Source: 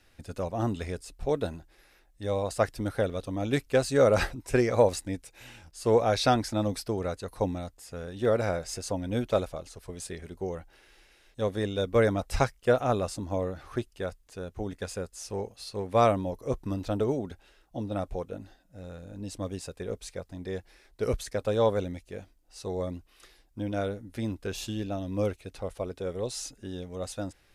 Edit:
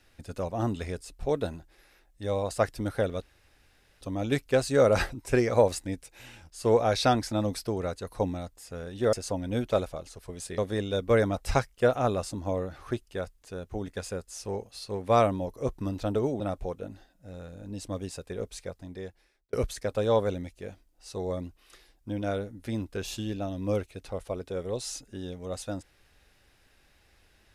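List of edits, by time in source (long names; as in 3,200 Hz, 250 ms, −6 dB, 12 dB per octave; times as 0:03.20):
0:03.22: splice in room tone 0.79 s
0:08.34–0:08.73: remove
0:10.18–0:11.43: remove
0:17.25–0:17.90: remove
0:20.17–0:21.03: fade out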